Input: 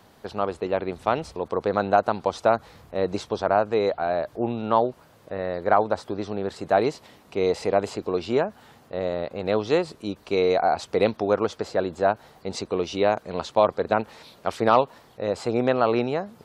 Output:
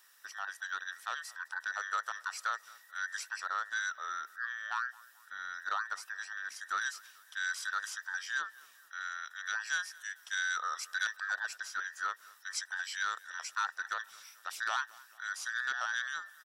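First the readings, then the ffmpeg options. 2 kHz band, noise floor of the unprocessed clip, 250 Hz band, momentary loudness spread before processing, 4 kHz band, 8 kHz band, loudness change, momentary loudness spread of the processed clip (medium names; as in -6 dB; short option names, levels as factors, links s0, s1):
+2.0 dB, -54 dBFS, under -40 dB, 10 LU, -4.5 dB, no reading, -12.0 dB, 9 LU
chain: -filter_complex "[0:a]afftfilt=real='real(if(between(b,1,1012),(2*floor((b-1)/92)+1)*92-b,b),0)':imag='imag(if(between(b,1,1012),(2*floor((b-1)/92)+1)*92-b,b),0)*if(between(b,1,1012),-1,1)':win_size=2048:overlap=0.75,asoftclip=type=tanh:threshold=0.473,aderivative,asplit=2[s0][s1];[s1]adelay=219,lowpass=f=4600:p=1,volume=0.0794,asplit=2[s2][s3];[s3]adelay=219,lowpass=f=4600:p=1,volume=0.5,asplit=2[s4][s5];[s5]adelay=219,lowpass=f=4600:p=1,volume=0.5[s6];[s0][s2][s4][s6]amix=inputs=4:normalize=0"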